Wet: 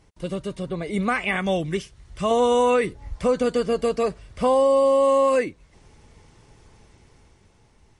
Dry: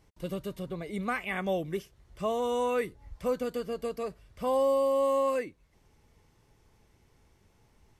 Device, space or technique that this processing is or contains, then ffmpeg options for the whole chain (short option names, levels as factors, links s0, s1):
low-bitrate web radio: -filter_complex "[0:a]asettb=1/sr,asplit=3[s0][s1][s2];[s0]atrim=end=1.364[s3];[s1]atrim=start=1.36:end=2.31,asetpts=PTS-STARTPTS,afade=t=in:d=0.004:c=qsin,afade=t=out:st=0.946:d=0.004:c=qsin,equalizer=f=490:t=o:w=2.3:g=-6.5[s4];[s2]atrim=start=2.306[s5];[s3][s4]acrossfade=d=0.004:c1=hsin:c2=qsin[s6];[s6][s5]acrossfade=d=0.004:c1=qsin:c2=hsin,dynaudnorm=f=110:g=17:m=2,alimiter=limit=0.126:level=0:latency=1:release=74,volume=2.11" -ar 44100 -c:a libmp3lame -b:a 48k